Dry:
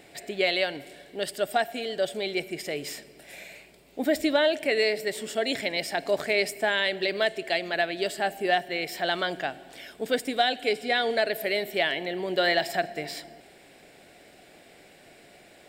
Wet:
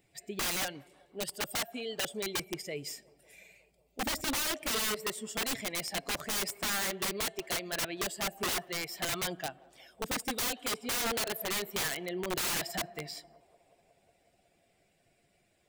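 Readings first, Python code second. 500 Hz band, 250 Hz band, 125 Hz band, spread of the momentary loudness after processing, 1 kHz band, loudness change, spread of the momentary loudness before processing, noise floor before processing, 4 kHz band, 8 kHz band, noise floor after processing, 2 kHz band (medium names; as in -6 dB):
-13.0 dB, -7.5 dB, -1.0 dB, 9 LU, -9.0 dB, -6.5 dB, 14 LU, -54 dBFS, -5.0 dB, +7.5 dB, -72 dBFS, -9.0 dB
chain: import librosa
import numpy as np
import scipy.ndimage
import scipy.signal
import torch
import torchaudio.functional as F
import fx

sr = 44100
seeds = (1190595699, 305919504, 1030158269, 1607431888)

y = fx.bin_expand(x, sr, power=1.5)
y = (np.mod(10.0 ** (27.0 / 20.0) * y + 1.0, 2.0) - 1.0) / 10.0 ** (27.0 / 20.0)
y = fx.echo_banded(y, sr, ms=182, feedback_pct=84, hz=620.0, wet_db=-24.0)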